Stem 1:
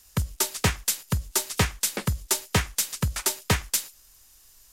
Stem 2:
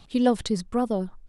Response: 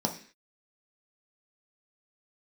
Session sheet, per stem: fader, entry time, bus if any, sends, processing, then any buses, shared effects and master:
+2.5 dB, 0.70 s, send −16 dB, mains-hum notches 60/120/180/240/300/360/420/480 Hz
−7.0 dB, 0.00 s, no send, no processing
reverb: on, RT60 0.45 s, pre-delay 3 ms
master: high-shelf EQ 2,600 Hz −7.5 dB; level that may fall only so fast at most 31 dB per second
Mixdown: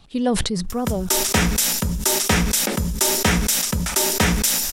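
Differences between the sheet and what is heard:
stem 2 −7.0 dB → −0.5 dB
master: missing high-shelf EQ 2,600 Hz −7.5 dB

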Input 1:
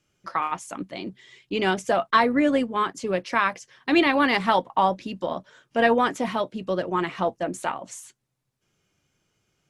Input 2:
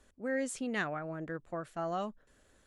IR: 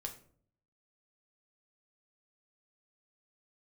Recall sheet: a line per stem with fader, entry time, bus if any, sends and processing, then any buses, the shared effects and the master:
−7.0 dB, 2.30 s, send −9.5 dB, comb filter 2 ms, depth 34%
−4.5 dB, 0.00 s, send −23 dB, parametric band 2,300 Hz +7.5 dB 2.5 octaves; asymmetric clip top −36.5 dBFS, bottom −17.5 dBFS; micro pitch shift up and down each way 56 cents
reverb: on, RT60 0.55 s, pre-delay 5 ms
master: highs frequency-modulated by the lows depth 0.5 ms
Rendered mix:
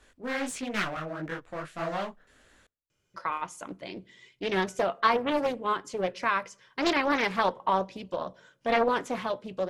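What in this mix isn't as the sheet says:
stem 1: entry 2.30 s → 2.90 s
stem 2 −4.5 dB → +6.0 dB

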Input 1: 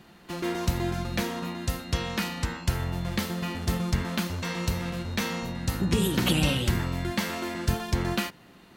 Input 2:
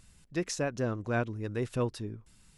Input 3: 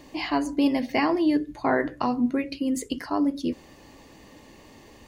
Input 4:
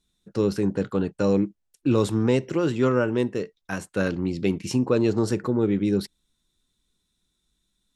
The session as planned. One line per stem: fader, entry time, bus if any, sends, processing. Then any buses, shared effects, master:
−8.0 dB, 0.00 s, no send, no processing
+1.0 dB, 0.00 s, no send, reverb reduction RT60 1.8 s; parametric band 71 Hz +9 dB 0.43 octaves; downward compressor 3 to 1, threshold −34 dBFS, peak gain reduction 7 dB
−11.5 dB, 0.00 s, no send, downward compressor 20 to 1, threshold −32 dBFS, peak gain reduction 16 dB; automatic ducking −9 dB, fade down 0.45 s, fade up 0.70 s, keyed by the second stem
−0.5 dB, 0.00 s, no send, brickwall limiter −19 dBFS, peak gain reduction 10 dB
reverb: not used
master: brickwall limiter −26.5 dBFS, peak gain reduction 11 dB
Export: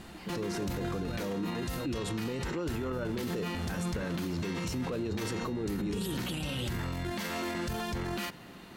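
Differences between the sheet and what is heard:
stem 1 −8.0 dB → +4.0 dB
stem 4 −0.5 dB → +6.5 dB

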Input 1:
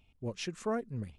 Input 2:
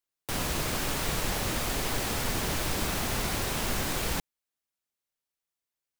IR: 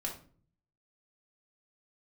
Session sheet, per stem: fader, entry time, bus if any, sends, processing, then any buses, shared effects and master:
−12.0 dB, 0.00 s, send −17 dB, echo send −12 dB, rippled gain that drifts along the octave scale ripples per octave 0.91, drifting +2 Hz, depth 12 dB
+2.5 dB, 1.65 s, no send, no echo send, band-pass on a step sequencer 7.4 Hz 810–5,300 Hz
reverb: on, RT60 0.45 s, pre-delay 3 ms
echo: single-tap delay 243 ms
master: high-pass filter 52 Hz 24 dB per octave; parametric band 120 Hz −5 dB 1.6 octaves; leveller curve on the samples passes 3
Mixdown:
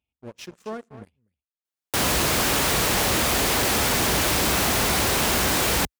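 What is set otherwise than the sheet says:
stem 1: missing rippled gain that drifts along the octave scale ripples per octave 0.91, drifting +2 Hz, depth 12 dB
stem 2: missing band-pass on a step sequencer 7.4 Hz 810–5,300 Hz

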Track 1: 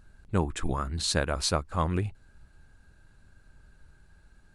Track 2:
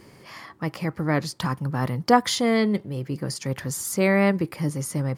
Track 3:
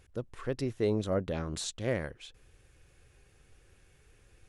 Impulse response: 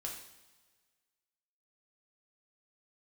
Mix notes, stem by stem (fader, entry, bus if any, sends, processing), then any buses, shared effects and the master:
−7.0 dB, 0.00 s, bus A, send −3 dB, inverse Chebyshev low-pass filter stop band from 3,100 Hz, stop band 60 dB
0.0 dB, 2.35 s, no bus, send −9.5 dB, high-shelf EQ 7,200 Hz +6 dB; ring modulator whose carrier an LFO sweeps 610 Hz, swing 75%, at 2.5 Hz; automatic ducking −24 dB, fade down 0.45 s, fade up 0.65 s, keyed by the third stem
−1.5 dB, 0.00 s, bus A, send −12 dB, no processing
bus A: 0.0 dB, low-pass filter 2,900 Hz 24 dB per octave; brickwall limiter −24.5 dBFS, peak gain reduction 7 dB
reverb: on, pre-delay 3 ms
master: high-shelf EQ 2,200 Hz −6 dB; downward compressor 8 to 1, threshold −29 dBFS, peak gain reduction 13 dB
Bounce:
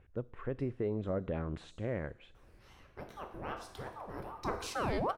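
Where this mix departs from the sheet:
stem 1: muted
reverb return −6.5 dB

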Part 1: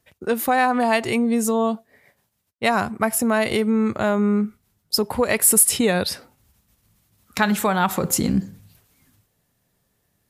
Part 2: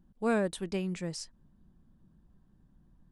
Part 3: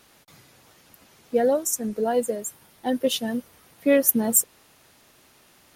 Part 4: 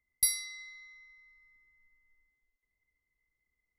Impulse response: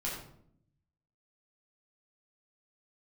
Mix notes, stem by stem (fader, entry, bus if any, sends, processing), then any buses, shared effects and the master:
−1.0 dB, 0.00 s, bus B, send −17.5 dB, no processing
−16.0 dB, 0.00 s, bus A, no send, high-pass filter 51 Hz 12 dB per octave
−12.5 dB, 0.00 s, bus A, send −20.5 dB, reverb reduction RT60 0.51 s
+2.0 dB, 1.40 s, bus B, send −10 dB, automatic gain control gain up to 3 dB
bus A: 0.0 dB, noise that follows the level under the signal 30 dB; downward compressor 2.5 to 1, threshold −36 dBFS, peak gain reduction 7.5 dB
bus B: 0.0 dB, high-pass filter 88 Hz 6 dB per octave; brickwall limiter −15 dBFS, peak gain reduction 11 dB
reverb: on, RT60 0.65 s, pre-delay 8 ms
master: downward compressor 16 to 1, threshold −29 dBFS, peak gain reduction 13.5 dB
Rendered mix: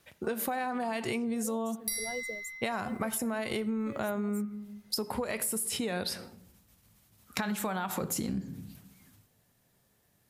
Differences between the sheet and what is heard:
stem 3: send off
stem 4: entry 1.40 s → 1.65 s

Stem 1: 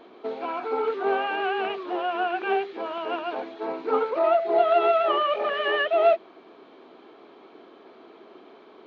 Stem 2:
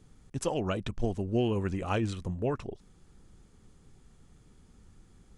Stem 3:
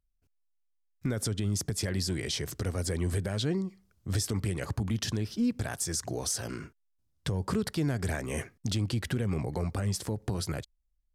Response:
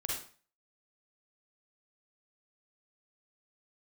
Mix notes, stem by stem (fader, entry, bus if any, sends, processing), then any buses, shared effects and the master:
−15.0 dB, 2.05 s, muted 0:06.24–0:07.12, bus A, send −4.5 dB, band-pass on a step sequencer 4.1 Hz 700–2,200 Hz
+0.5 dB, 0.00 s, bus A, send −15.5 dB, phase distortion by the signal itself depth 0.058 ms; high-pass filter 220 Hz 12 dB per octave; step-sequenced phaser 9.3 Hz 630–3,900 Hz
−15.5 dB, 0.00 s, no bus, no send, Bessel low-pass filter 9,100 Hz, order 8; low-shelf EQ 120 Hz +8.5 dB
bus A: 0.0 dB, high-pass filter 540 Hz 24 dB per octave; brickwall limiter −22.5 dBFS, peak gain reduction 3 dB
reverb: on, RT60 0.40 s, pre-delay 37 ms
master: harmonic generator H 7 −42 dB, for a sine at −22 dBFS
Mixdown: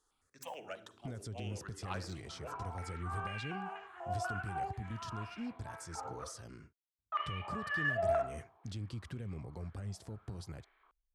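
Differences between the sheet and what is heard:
stem 1 −15.0 dB → −8.5 dB
stem 2 +0.5 dB → −6.5 dB

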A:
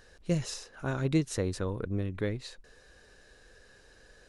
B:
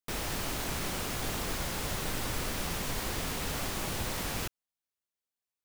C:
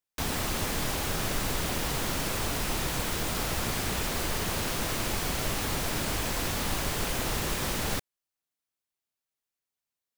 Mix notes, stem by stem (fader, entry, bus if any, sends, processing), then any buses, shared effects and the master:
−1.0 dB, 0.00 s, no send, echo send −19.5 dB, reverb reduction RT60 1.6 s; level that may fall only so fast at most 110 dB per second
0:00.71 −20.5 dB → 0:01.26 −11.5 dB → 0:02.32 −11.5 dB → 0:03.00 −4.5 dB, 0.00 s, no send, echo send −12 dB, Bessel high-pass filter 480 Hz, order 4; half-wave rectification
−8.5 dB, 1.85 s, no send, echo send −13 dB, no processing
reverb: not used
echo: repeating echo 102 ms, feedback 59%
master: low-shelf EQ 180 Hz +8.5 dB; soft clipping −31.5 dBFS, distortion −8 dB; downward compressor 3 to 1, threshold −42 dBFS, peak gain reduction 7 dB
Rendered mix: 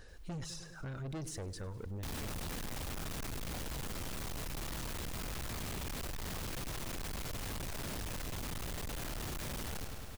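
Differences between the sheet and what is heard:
stem B −20.5 dB → −31.0 dB
stem C −8.5 dB → +3.0 dB

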